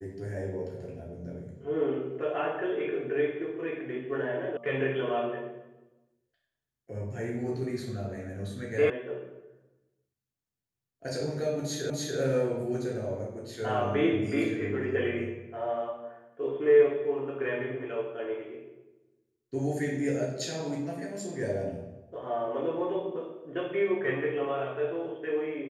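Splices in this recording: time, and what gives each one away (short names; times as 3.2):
4.57 sound cut off
8.9 sound cut off
11.9 repeat of the last 0.29 s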